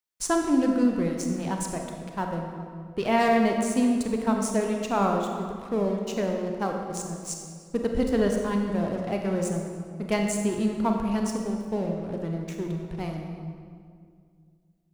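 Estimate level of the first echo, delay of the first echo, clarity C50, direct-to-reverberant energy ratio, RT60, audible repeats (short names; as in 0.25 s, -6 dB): none, none, 3.0 dB, 2.0 dB, 2.2 s, none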